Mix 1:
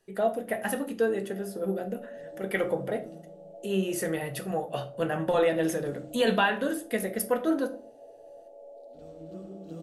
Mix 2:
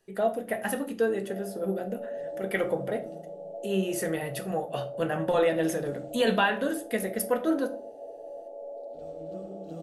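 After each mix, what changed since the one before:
first sound +7.5 dB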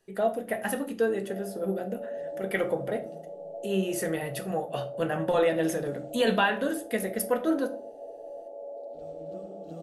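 second sound: send off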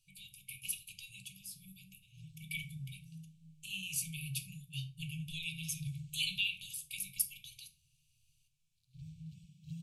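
second sound: remove static phaser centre 310 Hz, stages 4; master: add brick-wall FIR band-stop 160–2200 Hz

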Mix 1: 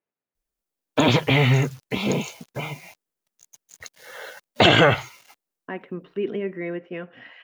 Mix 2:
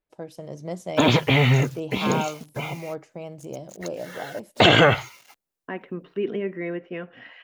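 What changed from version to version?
first voice: unmuted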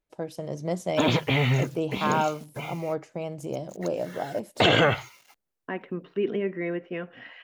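first voice +3.5 dB; background -5.0 dB

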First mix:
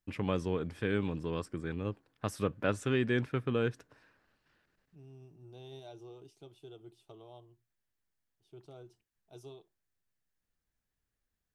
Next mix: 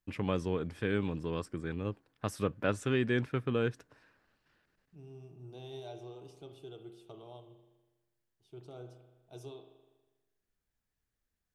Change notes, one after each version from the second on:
reverb: on, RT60 1.2 s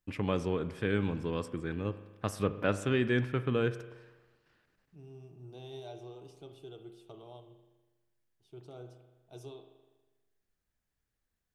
first voice: send on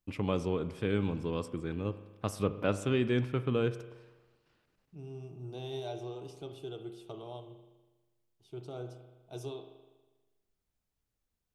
first voice: add peaking EQ 1.7 kHz -8 dB 0.45 oct; second voice +6.0 dB

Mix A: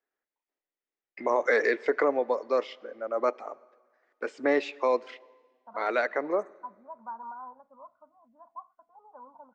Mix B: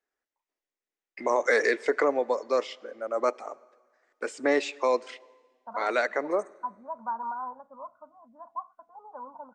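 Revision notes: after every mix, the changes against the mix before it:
second voice +6.5 dB; master: remove distance through air 160 m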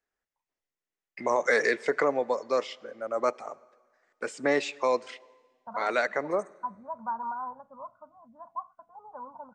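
master: add resonant low shelf 210 Hz +9 dB, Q 1.5

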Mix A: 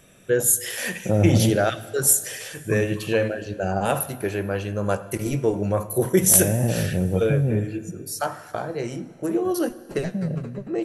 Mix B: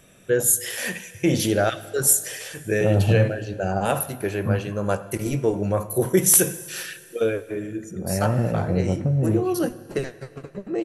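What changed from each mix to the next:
second voice: entry +1.75 s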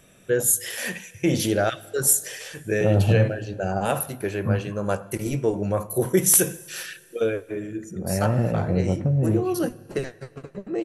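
first voice: send -6.0 dB

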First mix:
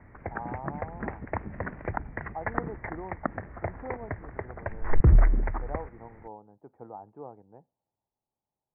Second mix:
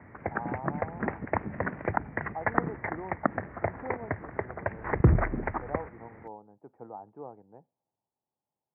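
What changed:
background +4.0 dB; master: add high-pass 110 Hz 12 dB/octave

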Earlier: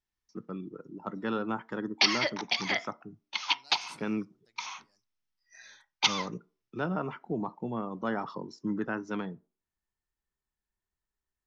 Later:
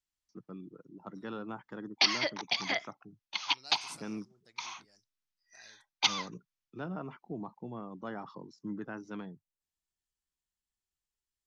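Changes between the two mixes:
first voice -7.0 dB; second voice +6.5 dB; reverb: off

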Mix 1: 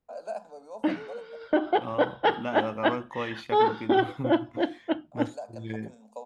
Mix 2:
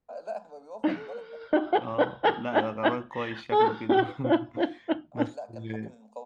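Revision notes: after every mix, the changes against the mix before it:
master: add distance through air 66 m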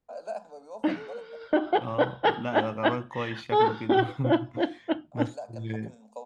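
second voice: add peaking EQ 130 Hz +7.5 dB 0.56 oct; master: add treble shelf 7.3 kHz +11.5 dB

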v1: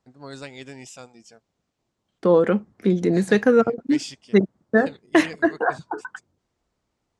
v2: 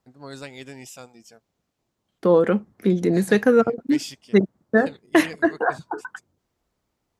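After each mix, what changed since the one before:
master: remove low-pass 9 kHz 24 dB/octave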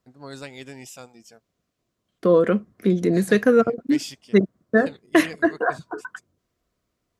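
second voice: add Butterworth band-stop 850 Hz, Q 4.9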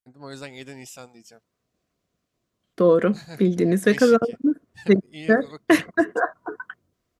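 second voice: entry +0.55 s

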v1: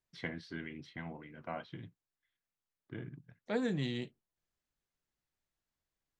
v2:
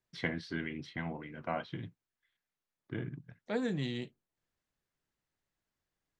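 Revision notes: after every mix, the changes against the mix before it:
first voice +5.5 dB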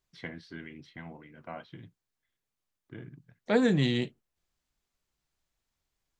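first voice -6.0 dB; second voice +9.5 dB

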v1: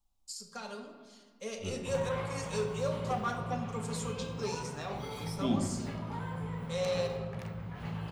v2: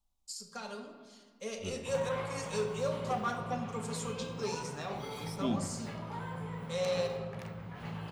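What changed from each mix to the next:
second voice: send -9.5 dB; background: add high-pass 150 Hz 6 dB/octave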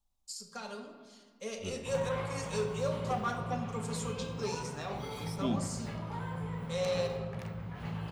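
background: remove high-pass 150 Hz 6 dB/octave

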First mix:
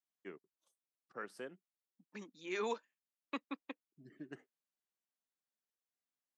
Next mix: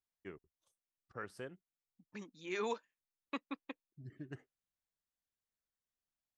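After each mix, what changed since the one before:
master: remove high-pass 190 Hz 24 dB/octave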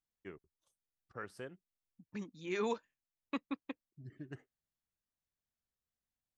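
second voice: remove high-pass 380 Hz 6 dB/octave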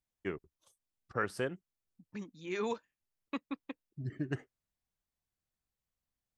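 first voice +11.5 dB

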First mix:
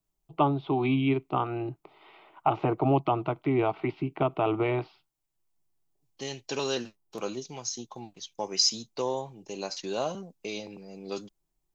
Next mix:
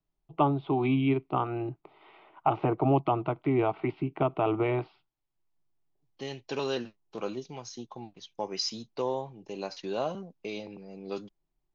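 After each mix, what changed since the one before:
master: add distance through air 180 m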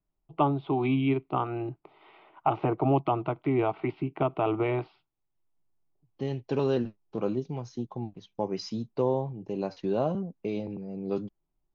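second voice: add tilt EQ -4 dB/octave

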